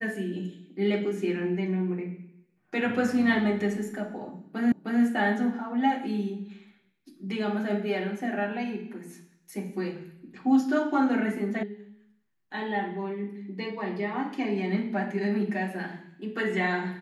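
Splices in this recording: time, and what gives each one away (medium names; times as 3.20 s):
4.72 s: repeat of the last 0.31 s
11.63 s: sound stops dead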